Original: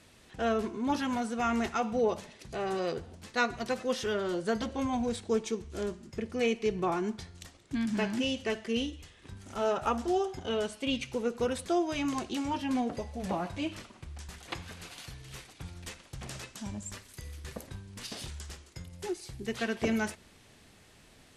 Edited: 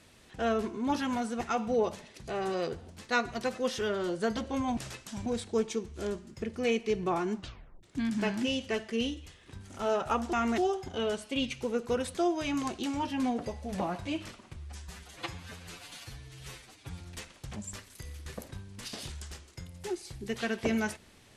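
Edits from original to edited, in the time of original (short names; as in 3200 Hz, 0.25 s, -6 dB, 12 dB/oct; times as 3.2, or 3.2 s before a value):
1.41–1.66 move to 10.09
7.11 tape stop 0.48 s
14.07–15.7 stretch 1.5×
16.26–16.75 move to 5.02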